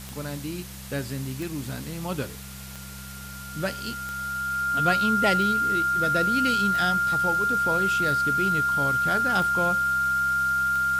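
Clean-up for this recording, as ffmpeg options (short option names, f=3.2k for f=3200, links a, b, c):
-af "adeclick=t=4,bandreject=f=65.9:t=h:w=4,bandreject=f=131.8:t=h:w=4,bandreject=f=197.7:t=h:w=4,bandreject=f=1.4k:w=30,afwtdn=0.0079"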